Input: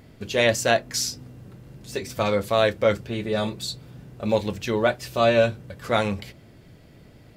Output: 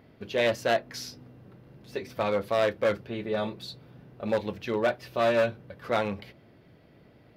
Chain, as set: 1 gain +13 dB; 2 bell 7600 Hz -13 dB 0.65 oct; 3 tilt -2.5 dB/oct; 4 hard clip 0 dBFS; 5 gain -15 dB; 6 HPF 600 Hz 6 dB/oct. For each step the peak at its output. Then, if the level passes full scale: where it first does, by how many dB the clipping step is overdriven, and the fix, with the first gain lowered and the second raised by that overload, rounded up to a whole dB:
+7.0, +7.0, +7.5, 0.0, -15.0, -11.5 dBFS; step 1, 7.5 dB; step 1 +5 dB, step 5 -7 dB

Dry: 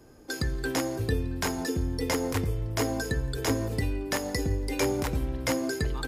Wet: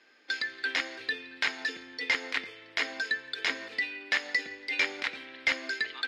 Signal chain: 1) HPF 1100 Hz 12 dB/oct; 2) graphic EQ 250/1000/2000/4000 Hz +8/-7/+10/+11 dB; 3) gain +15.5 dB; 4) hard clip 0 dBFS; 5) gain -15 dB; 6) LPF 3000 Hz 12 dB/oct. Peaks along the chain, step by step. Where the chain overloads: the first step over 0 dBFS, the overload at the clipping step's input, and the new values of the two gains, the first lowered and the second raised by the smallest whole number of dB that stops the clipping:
-16.0, -6.0, +9.5, 0.0, -15.0, -14.5 dBFS; step 3, 9.5 dB; step 3 +5.5 dB, step 5 -5 dB

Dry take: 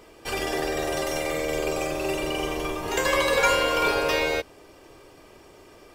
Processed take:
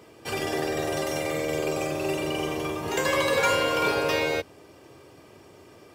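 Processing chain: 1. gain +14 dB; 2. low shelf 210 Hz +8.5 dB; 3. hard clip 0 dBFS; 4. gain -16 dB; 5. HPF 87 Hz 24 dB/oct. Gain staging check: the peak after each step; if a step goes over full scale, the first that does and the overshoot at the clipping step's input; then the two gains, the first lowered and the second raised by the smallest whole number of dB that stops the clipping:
+5.0, +6.5, 0.0, -16.0, -12.5 dBFS; step 1, 6.5 dB; step 1 +7 dB, step 4 -9 dB

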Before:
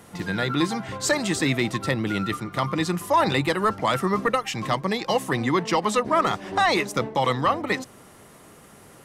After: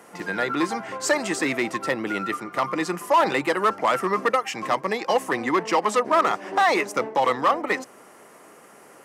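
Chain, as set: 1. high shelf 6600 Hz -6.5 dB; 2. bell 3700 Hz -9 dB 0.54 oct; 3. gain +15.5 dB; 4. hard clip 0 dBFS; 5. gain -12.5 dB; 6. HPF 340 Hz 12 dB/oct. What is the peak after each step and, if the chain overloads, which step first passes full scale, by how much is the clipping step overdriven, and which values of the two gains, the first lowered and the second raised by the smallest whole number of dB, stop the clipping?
-11.5, -11.5, +4.0, 0.0, -12.5, -8.5 dBFS; step 3, 4.0 dB; step 3 +11.5 dB, step 5 -8.5 dB

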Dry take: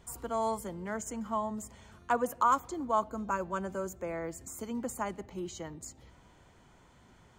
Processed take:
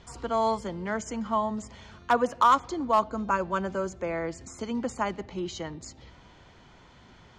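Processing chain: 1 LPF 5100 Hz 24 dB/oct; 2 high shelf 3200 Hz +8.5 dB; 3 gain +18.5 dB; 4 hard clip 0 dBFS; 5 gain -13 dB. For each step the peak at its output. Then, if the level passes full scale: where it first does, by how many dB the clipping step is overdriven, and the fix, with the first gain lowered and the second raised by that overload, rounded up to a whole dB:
-16.0, -15.0, +3.5, 0.0, -13.0 dBFS; step 3, 3.5 dB; step 3 +14.5 dB, step 5 -9 dB

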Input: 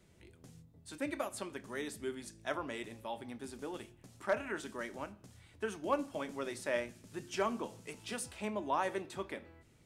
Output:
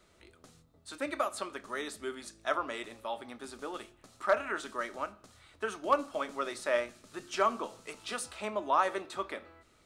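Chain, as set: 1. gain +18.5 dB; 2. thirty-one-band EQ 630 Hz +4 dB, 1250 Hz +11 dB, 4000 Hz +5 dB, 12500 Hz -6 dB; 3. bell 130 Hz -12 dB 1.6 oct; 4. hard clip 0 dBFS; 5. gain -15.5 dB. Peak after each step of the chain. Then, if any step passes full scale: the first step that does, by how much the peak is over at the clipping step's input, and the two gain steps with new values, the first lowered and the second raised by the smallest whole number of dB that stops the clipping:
-2.0, +3.5, +3.0, 0.0, -15.5 dBFS; step 2, 3.0 dB; step 1 +15.5 dB, step 5 -12.5 dB

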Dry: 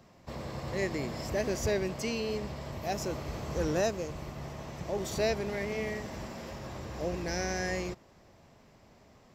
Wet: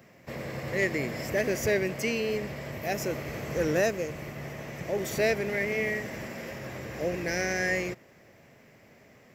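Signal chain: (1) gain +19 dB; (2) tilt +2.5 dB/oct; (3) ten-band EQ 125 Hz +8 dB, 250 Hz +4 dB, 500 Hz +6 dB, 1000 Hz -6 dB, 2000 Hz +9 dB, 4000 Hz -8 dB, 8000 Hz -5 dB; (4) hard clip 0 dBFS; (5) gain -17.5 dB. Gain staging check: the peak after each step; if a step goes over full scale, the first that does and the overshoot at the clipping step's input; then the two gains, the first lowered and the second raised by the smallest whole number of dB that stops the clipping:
+0.5, +2.5, +4.5, 0.0, -17.5 dBFS; step 1, 4.5 dB; step 1 +14 dB, step 5 -12.5 dB

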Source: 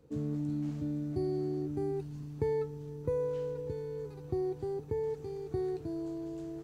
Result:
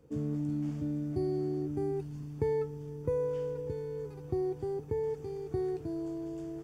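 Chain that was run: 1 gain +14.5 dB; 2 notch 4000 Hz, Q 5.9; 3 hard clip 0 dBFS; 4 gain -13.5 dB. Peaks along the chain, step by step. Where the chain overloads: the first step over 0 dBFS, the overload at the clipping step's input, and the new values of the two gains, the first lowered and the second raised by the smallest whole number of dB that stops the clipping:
-5.0, -5.0, -5.0, -18.5 dBFS; no overload

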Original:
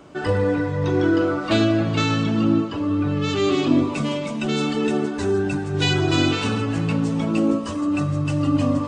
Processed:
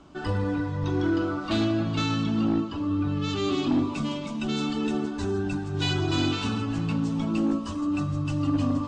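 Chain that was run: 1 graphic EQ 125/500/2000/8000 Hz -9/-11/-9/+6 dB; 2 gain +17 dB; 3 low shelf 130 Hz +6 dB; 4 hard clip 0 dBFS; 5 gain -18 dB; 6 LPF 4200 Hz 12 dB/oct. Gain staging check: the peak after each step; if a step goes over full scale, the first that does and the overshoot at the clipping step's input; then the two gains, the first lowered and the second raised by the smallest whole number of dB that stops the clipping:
-11.0, +6.0, +7.0, 0.0, -18.0, -17.5 dBFS; step 2, 7.0 dB; step 2 +10 dB, step 5 -11 dB

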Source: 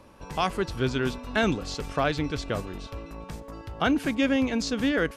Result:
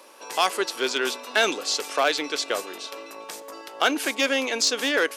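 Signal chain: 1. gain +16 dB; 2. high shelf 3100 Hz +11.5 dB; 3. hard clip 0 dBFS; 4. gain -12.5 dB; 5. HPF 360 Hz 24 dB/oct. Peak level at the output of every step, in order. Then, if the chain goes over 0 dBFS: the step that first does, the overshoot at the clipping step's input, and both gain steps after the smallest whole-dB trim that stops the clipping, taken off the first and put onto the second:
+3.0, +7.0, 0.0, -12.5, -6.0 dBFS; step 1, 7.0 dB; step 1 +9 dB, step 4 -5.5 dB

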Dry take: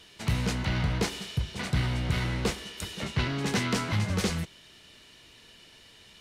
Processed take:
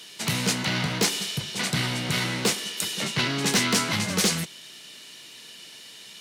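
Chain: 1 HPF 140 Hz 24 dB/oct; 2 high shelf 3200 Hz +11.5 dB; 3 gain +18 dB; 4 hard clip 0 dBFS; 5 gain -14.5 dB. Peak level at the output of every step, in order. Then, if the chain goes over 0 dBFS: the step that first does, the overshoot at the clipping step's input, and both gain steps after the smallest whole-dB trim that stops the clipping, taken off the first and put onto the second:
-14.0, -9.0, +9.0, 0.0, -14.5 dBFS; step 3, 9.0 dB; step 3 +9 dB, step 5 -5.5 dB

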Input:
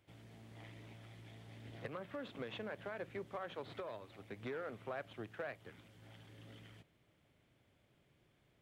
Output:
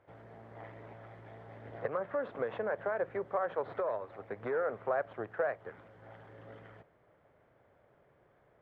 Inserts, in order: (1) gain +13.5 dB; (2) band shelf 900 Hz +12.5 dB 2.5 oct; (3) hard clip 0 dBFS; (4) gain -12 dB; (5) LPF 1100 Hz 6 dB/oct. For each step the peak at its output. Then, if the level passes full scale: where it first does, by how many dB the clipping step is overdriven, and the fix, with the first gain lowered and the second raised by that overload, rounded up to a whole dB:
-16.0, -5.5, -5.5, -17.5, -19.5 dBFS; no overload

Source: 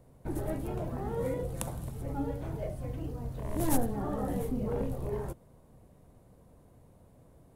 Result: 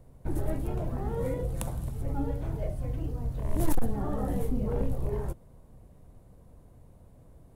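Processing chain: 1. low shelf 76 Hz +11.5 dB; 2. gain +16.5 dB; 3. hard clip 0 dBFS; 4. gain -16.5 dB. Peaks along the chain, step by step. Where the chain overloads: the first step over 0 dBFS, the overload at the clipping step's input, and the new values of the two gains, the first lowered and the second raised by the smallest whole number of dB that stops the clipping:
-7.5, +9.0, 0.0, -16.5 dBFS; step 2, 9.0 dB; step 2 +7.5 dB, step 4 -7.5 dB

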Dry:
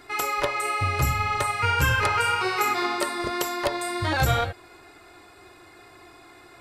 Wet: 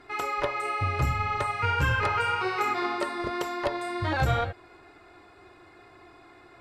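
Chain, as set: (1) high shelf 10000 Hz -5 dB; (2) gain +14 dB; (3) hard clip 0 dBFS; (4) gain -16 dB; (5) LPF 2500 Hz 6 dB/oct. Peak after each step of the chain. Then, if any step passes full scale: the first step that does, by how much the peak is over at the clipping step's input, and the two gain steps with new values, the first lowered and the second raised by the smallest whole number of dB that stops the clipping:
-10.5, +3.5, 0.0, -16.0, -16.0 dBFS; step 2, 3.5 dB; step 2 +10 dB, step 4 -12 dB

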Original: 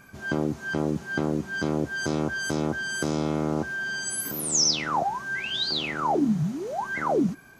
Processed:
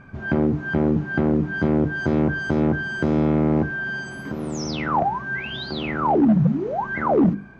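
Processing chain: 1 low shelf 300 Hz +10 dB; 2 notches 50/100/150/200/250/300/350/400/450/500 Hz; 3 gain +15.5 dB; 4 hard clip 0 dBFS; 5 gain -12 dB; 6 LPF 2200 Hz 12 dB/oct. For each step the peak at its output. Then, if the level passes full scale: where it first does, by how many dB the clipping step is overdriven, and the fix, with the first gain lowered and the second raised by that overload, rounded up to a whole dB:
-8.5, -9.0, +6.5, 0.0, -12.0, -11.5 dBFS; step 3, 6.5 dB; step 3 +8.5 dB, step 5 -5 dB

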